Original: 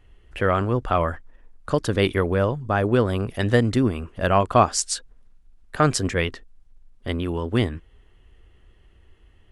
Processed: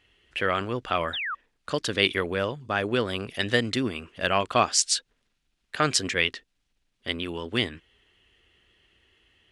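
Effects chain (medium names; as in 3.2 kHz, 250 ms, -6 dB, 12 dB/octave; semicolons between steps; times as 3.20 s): frequency weighting D; painted sound fall, 1.13–1.35 s, 1.1–3.9 kHz -25 dBFS; trim -5.5 dB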